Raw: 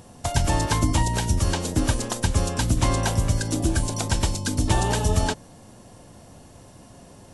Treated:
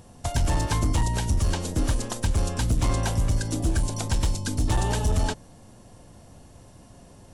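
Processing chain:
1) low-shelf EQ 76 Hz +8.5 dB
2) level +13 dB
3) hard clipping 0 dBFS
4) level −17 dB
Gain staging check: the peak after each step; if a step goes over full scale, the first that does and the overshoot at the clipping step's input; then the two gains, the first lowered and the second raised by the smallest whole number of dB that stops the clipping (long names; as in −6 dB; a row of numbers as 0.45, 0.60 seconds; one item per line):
−4.5, +8.5, 0.0, −17.0 dBFS
step 2, 8.5 dB
step 2 +4 dB, step 4 −8 dB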